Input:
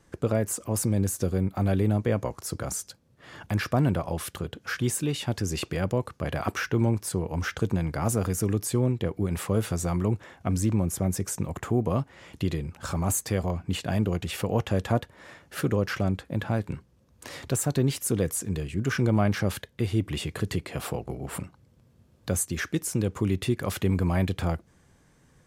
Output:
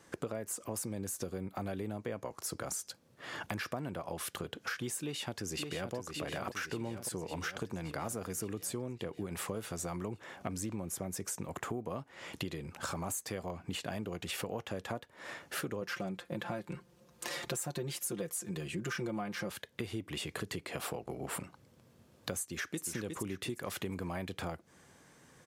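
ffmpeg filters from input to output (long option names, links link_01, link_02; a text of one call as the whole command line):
ffmpeg -i in.wav -filter_complex "[0:a]asplit=2[link_01][link_02];[link_02]afade=type=in:start_time=5:duration=0.01,afade=type=out:start_time=5.94:duration=0.01,aecho=0:1:570|1140|1710|2280|2850|3420|3990|4560|5130|5700:0.501187|0.325772|0.211752|0.137639|0.0894651|0.0581523|0.037799|0.0245693|0.0159701|0.0103805[link_03];[link_01][link_03]amix=inputs=2:normalize=0,asettb=1/sr,asplit=3[link_04][link_05][link_06];[link_04]atrim=end=15.814[link_07];[link_05]atrim=start=15.81:end=19.5,asetpts=PTS-STARTPTS,afade=type=in:duration=0.004:curve=qsin,afade=type=out:start_time=3.686:duration=0.004:curve=qsin,aecho=1:1:5.7:0.82,atrim=end_sample=162729[link_08];[link_06]atrim=start=19.496[link_09];[link_07][link_08]acrossfade=duration=0.004:curve1=hsin:curve2=qsin[link_10];[link_10][link_09]acrossfade=duration=0.004:curve1=qsin:curve2=hsin,asplit=2[link_11][link_12];[link_12]afade=type=in:start_time=22.41:duration=0.01,afade=type=out:start_time=22.86:duration=0.01,aecho=0:1:360|720|1080|1440:0.501187|0.175416|0.0613954|0.0214884[link_13];[link_11][link_13]amix=inputs=2:normalize=0,highpass=frequency=320:poles=1,acompressor=threshold=-40dB:ratio=6,volume=4dB" out.wav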